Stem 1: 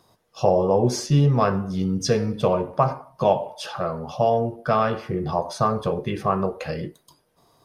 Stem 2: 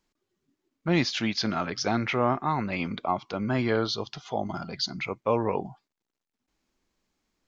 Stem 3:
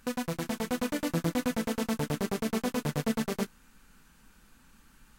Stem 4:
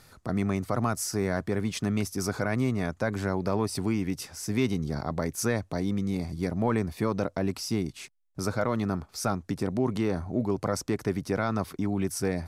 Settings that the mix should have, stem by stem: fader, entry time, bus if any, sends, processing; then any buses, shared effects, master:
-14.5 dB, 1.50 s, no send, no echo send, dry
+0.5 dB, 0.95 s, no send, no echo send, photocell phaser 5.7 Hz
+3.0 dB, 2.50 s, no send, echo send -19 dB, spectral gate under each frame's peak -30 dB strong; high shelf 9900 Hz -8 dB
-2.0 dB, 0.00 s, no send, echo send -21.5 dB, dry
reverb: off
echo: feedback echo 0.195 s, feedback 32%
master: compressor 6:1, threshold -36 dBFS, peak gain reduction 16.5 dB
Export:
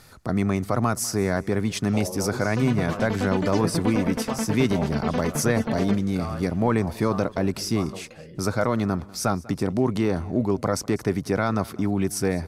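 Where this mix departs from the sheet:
stem 2: muted; stem 4 -2.0 dB -> +4.5 dB; master: missing compressor 6:1, threshold -36 dBFS, peak gain reduction 16.5 dB

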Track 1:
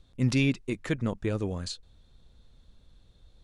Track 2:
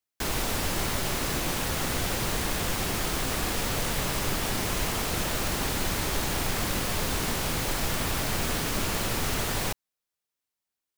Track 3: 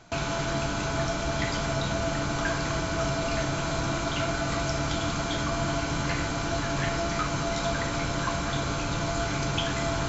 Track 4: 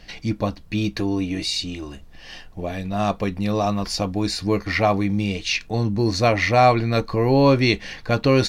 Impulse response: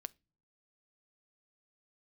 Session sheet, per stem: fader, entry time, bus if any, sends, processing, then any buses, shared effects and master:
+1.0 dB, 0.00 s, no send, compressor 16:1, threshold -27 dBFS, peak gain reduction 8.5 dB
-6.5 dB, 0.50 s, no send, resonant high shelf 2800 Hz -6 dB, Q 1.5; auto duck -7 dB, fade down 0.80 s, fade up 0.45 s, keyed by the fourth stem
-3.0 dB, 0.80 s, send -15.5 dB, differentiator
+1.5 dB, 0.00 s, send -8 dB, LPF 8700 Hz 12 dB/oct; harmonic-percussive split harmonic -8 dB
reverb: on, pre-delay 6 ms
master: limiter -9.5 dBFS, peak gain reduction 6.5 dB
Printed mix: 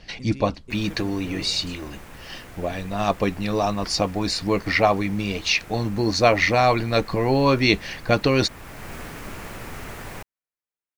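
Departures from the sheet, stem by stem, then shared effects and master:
stem 1 +1.0 dB -> -8.5 dB; stem 3: muted; master: missing limiter -9.5 dBFS, peak gain reduction 6.5 dB

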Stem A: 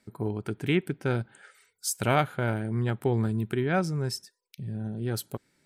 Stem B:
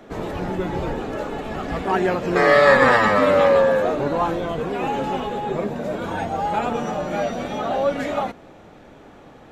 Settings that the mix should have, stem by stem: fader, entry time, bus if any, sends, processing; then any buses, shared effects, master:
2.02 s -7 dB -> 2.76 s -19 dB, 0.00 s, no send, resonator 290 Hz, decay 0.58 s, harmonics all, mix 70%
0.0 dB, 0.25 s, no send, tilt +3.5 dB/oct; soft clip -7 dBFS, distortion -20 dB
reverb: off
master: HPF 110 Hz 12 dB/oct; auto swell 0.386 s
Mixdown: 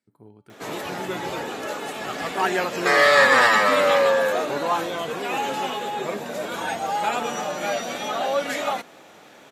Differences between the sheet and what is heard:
stem B: entry 0.25 s -> 0.50 s; master: missing auto swell 0.386 s

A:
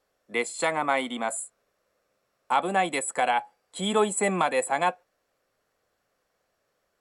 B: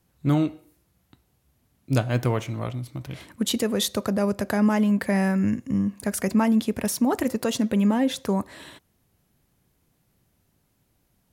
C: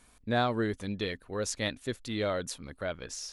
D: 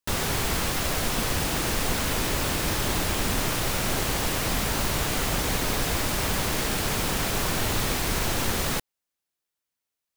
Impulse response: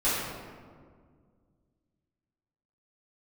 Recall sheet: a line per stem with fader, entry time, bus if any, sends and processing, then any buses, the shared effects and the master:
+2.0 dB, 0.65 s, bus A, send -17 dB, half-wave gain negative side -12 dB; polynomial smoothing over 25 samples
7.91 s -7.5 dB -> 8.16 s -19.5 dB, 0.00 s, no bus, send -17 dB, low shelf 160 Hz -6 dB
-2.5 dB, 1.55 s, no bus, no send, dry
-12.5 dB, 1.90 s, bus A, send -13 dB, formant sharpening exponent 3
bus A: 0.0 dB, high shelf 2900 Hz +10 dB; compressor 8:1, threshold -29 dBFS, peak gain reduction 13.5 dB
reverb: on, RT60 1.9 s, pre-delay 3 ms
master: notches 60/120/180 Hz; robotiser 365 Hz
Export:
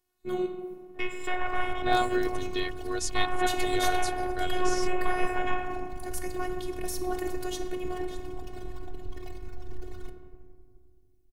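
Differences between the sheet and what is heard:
stem C -2.5 dB -> +4.0 dB; stem D: entry 1.90 s -> 1.30 s

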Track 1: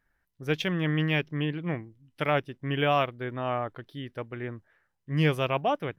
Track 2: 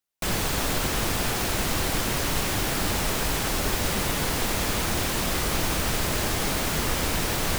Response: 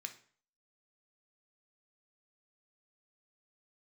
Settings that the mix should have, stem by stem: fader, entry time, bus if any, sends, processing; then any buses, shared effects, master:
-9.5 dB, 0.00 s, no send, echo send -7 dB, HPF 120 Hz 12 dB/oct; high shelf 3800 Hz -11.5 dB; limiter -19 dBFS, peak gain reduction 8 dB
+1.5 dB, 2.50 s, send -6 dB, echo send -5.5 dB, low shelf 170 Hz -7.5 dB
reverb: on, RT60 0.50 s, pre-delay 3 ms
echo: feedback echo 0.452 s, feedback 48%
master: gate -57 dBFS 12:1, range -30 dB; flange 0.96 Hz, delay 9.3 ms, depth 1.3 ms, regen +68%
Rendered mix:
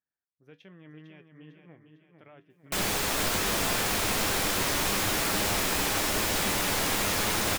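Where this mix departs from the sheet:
stem 1 -9.5 dB -> -16.5 dB; master: missing gate -57 dBFS 12:1, range -30 dB

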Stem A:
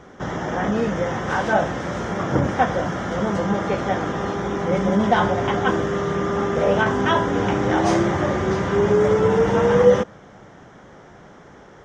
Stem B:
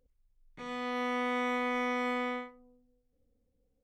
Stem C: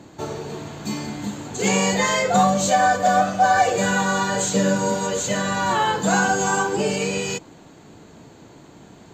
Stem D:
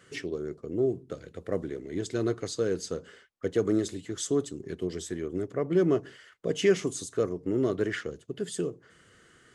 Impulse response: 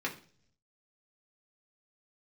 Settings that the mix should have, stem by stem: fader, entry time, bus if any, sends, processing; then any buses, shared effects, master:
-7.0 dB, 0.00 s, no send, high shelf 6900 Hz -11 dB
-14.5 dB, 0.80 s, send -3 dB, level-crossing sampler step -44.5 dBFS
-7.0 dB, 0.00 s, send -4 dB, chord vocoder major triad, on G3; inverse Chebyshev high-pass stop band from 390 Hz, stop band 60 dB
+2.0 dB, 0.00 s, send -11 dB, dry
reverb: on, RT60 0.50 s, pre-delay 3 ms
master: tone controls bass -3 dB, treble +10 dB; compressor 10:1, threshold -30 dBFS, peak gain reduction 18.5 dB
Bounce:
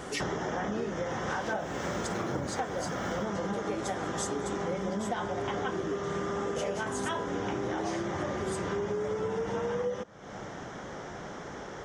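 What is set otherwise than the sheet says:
stem A -7.0 dB -> +4.5 dB; stem C -7.0 dB -> -14.5 dB

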